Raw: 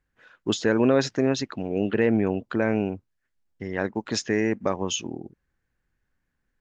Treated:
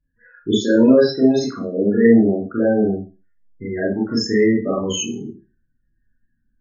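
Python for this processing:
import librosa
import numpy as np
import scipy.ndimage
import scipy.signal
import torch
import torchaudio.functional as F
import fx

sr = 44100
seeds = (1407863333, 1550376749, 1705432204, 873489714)

y = fx.low_shelf(x, sr, hz=96.0, db=-11.0, at=(0.58, 2.85))
y = fx.spec_topn(y, sr, count=16)
y = fx.rev_schroeder(y, sr, rt60_s=0.32, comb_ms=27, drr_db=-6.5)
y = fx.notch_cascade(y, sr, direction='falling', hz=1.2)
y = F.gain(torch.from_numpy(y), 2.0).numpy()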